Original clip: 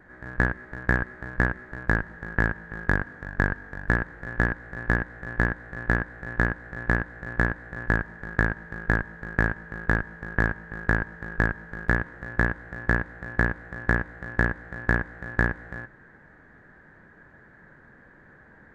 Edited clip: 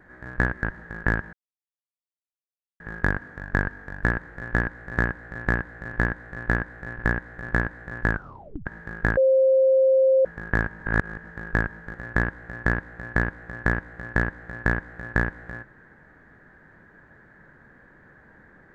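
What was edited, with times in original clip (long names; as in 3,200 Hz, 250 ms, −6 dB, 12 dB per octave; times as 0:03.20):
0:00.63–0:01.95: remove
0:02.65: splice in silence 1.47 s
0:04.83–0:05.33: swap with 0:06.39–0:07.34
0:07.98: tape stop 0.53 s
0:09.02–0:10.10: beep over 529 Hz −14.5 dBFS
0:10.65–0:11.09: reverse
0:11.79–0:12.17: remove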